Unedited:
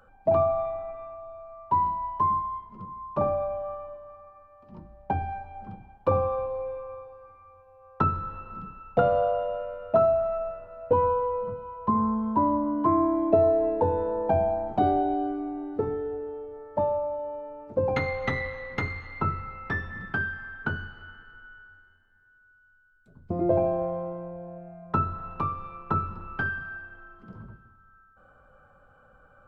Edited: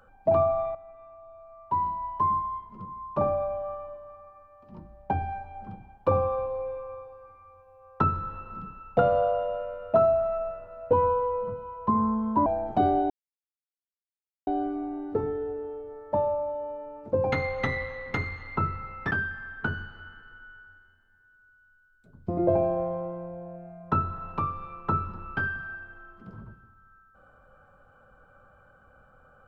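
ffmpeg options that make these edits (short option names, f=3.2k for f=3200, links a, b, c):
-filter_complex "[0:a]asplit=5[a][b][c][d][e];[a]atrim=end=0.75,asetpts=PTS-STARTPTS,afade=t=out:st=0.746:d=0.004:c=hsin:silence=0.223872[f];[b]atrim=start=0.75:end=12.462,asetpts=PTS-STARTPTS,afade=t=in:d=1.68:silence=0.223872[g];[c]atrim=start=14.468:end=15.11,asetpts=PTS-STARTPTS,afade=t=out:st=0.638:d=0.004:c=hsin,apad=pad_dur=1.37[h];[d]atrim=start=15.11:end=19.752,asetpts=PTS-STARTPTS,afade=t=in:d=0.004:c=hsin[i];[e]atrim=start=20.128[j];[f][g]concat=n=2:v=0:a=1[k];[h][i]concat=n=2:v=0:a=1[l];[k][l]acrossfade=d=0.004:c1=hsin:c2=hsin[m];[m][j]acrossfade=d=0.004:c1=hsin:c2=hsin"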